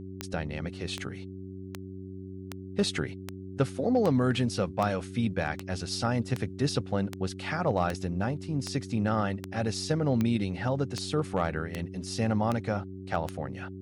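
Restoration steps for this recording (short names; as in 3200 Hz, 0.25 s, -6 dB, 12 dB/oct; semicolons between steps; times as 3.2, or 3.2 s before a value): clip repair -16.5 dBFS; de-click; de-hum 94.7 Hz, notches 4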